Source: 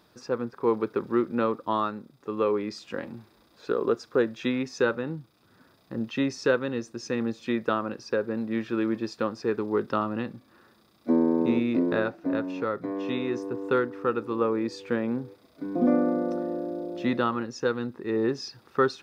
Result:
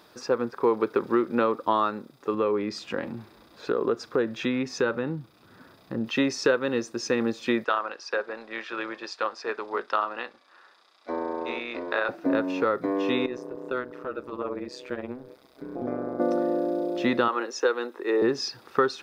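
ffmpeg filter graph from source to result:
-filter_complex "[0:a]asettb=1/sr,asplit=3[s0][s1][s2];[s0]atrim=end=2.344[s3];[s1]atrim=start=2.34:end=6.06,asetpts=PTS-STARTPTS,afade=t=in:d=0.004:c=qsin,afade=t=out:st=3.716:d=0.004:c=qsin,bass=f=250:g=7,treble=f=4000:g=-3,acompressor=threshold=0.0158:ratio=1.5:attack=3.2:release=140:knee=1:detection=peak[s4];[s2]atrim=start=6.056[s5];[s3][s4]acrossfade=d=0.004:c1=hsin:c2=qsin[s6];[s6][s5]acrossfade=d=0.004:c1=qsin:c2=hsin,asettb=1/sr,asplit=3[s7][s8][s9];[s7]atrim=end=7.644[s10];[s8]atrim=start=7.64:end=12.09,asetpts=PTS-STARTPTS,afade=t=in:d=0.004:c=qsin,afade=t=out:st=4.446:d=0.004:c=qsin,highpass=730,lowpass=6400,tremolo=f=190:d=0.4[s11];[s9]atrim=start=12.086[s12];[s10][s11]acrossfade=d=0.004:c1=hsin:c2=qsin[s13];[s13][s12]acrossfade=d=0.004:c1=qsin:c2=hsin,asettb=1/sr,asplit=3[s14][s15][s16];[s14]atrim=end=13.264[s17];[s15]atrim=start=13.26:end=16.2,asetpts=PTS-STARTPTS,afade=t=in:d=0.004:c=qsin,afade=t=out:st=2.936:d=0.004:c=qsin,acompressor=threshold=0.00501:ratio=1.5:attack=3.2:release=140:knee=1:detection=peak,tremolo=f=130:d=0.889[s18];[s16]atrim=start=16.196[s19];[s17][s18]acrossfade=d=0.004:c1=hsin:c2=qsin[s20];[s20][s19]acrossfade=d=0.004:c1=qsin:c2=hsin,asettb=1/sr,asplit=3[s21][s22][s23];[s21]atrim=end=17.284[s24];[s22]atrim=start=17.28:end=18.22,asetpts=PTS-STARTPTS,afade=t=in:d=0.004:c=qsin,afade=t=out:st=0.936:d=0.004:c=qsin,highpass=f=340:w=0.5412,highpass=f=340:w=1.3066,bandreject=f=4700:w=8.1[s25];[s23]atrim=start=18.216[s26];[s24][s25]acrossfade=d=0.004:c1=hsin:c2=qsin[s27];[s27][s26]acrossfade=d=0.004:c1=qsin:c2=hsin,bass=f=250:g=-9,treble=f=4000:g=-1,acompressor=threshold=0.0447:ratio=3,volume=2.37"

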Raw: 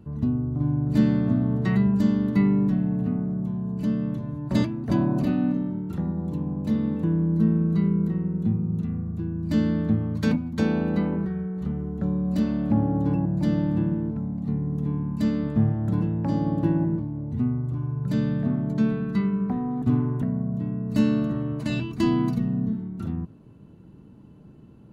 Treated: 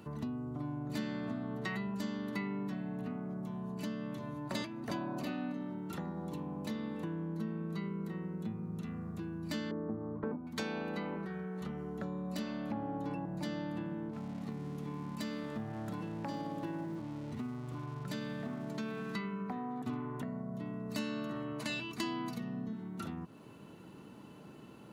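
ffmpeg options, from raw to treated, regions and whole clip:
-filter_complex "[0:a]asettb=1/sr,asplit=3[s0][s1][s2];[s0]atrim=end=9.714[s3];[s1]atrim=start=9.71:end=10.47,asetpts=PTS-STARTPTS,afade=t=in:d=0.004:c=qsin,afade=t=out:st=0.756:d=0.004:c=qsin,lowpass=f=1200:w=0.5412,lowpass=f=1200:w=1.3066,equalizer=f=380:t=o:w=0.4:g=12[s4];[s2]atrim=start=10.466[s5];[s3][s4]acrossfade=d=0.004:c1=hsin:c2=qsin[s6];[s6][s5]acrossfade=d=0.004:c1=qsin:c2=hsin,asettb=1/sr,asplit=3[s7][s8][s9];[s7]atrim=end=14.134[s10];[s8]atrim=start=14.13:end=19.15,asetpts=PTS-STARTPTS,afade=t=in:d=0.004:c=qsin,afade=t=out:st=5.016:d=0.004:c=qsin,aeval=exprs='sgn(val(0))*max(abs(val(0))-0.00211,0)':c=same,acompressor=threshold=0.0447:ratio=1.5:attack=3.2:release=140:knee=1:detection=peak[s11];[s9]atrim=start=19.146[s12];[s10][s11]acrossfade=d=0.004:c1=hsin:c2=qsin[s13];[s13][s12]acrossfade=d=0.004:c1=qsin:c2=hsin,highpass=f=1200:p=1,bandreject=f=1600:w=22,acompressor=threshold=0.00282:ratio=3,volume=3.55"

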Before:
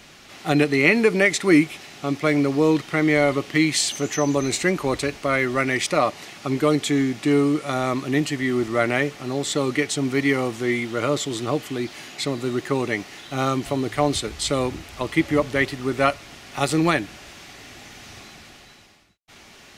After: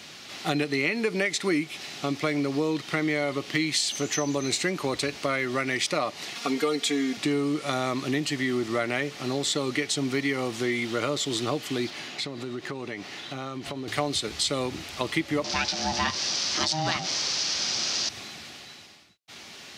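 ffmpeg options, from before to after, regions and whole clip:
-filter_complex "[0:a]asettb=1/sr,asplit=3[s0][s1][s2];[s0]atrim=end=6.354[s3];[s1]atrim=start=6.35:end=7.17,asetpts=PTS-STARTPTS,afade=t=in:d=0.004:c=qsin,afade=t=out:st=0.816:d=0.004:c=qsin,bass=f=250:g=-8,treble=f=4000:g=0,aecho=1:1:4.3:0.99,atrim=end_sample=36162[s4];[s2]atrim=start=7.166[s5];[s3][s4]acrossfade=d=0.004:c1=hsin:c2=qsin[s6];[s6][s5]acrossfade=d=0.004:c1=qsin:c2=hsin,asettb=1/sr,asplit=3[s7][s8][s9];[s7]atrim=end=11.904[s10];[s8]atrim=start=11.9:end=13.88,asetpts=PTS-STARTPTS,afade=t=in:d=0.004:c=qsin,afade=t=out:st=1.976:d=0.004:c=qsin,aemphasis=mode=reproduction:type=cd,acompressor=threshold=0.0282:ratio=6:attack=3.2:release=140:knee=1:detection=peak[s11];[s9]atrim=start=13.876[s12];[s10][s11]acrossfade=d=0.004:c1=hsin:c2=qsin[s13];[s13][s12]acrossfade=d=0.004:c1=qsin:c2=hsin,asettb=1/sr,asplit=3[s14][s15][s16];[s14]atrim=end=15.444[s17];[s15]atrim=start=15.44:end=18.09,asetpts=PTS-STARTPTS,afade=t=in:d=0.004:c=qsin,afade=t=out:st=2.646:d=0.004:c=qsin,aeval=exprs='val(0)+0.5*0.0422*sgn(val(0))':c=same,lowpass=f=5400:t=q:w=5.6,aeval=exprs='val(0)*sin(2*PI*470*n/s)':c=same[s18];[s16]atrim=start=18.086[s19];[s17][s18]acrossfade=d=0.004:c1=hsin:c2=qsin[s20];[s20][s19]acrossfade=d=0.004:c1=qsin:c2=hsin,highpass=99,equalizer=f=4300:t=o:w=1.3:g=6.5,acompressor=threshold=0.0631:ratio=4"

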